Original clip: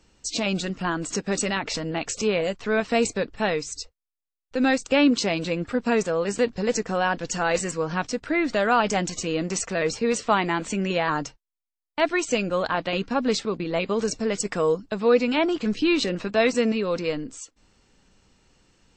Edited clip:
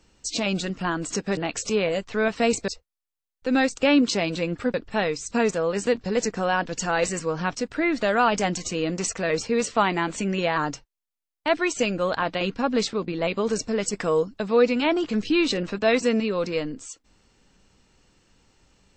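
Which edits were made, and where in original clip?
1.37–1.89 cut
3.2–3.77 move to 5.83

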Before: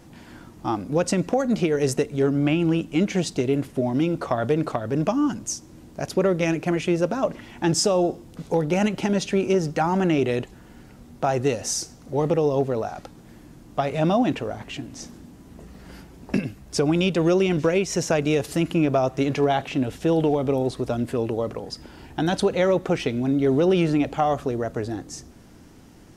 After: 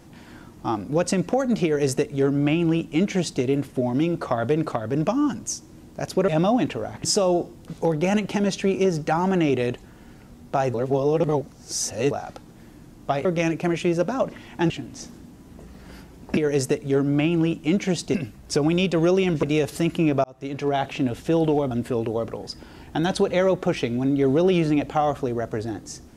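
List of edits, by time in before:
1.65–3.42 copy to 16.37
6.28–7.73 swap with 13.94–14.7
11.43–12.8 reverse
17.66–18.19 cut
19–19.64 fade in
20.47–20.94 cut

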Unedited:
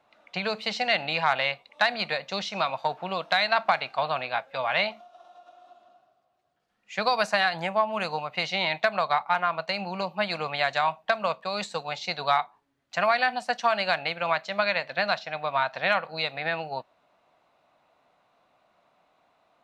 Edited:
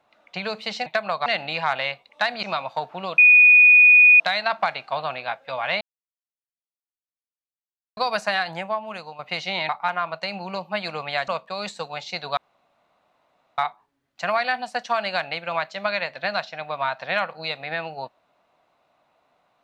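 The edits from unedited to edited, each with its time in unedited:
2.03–2.51 cut
3.26 add tone 2470 Hz -8.5 dBFS 1.02 s
4.87–7.03 mute
7.53–8.25 fade out, to -11 dB
8.75–9.15 move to 0.86
10.74–11.23 cut
12.32 insert room tone 1.21 s

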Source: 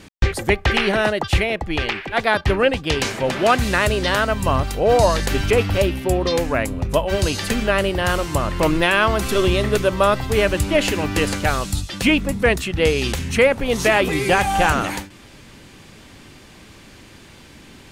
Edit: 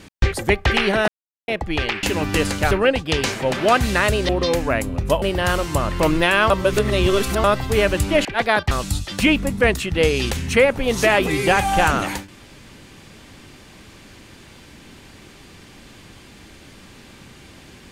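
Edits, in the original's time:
1.08–1.48 mute
2.03–2.49 swap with 10.85–11.53
4.07–6.13 cut
7.06–7.82 cut
9.1–10.04 reverse

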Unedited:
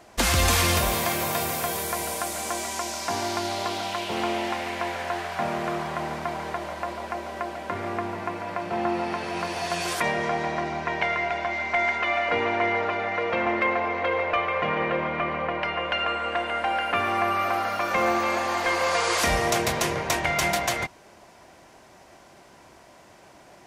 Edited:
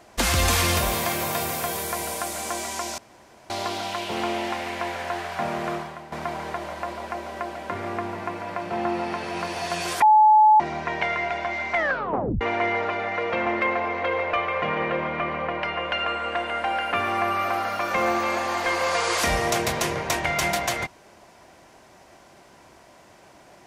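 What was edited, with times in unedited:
2.98–3.5 room tone
5.74–6.12 fade out quadratic, to -12.5 dB
10.02–10.6 bleep 859 Hz -11 dBFS
11.76 tape stop 0.65 s

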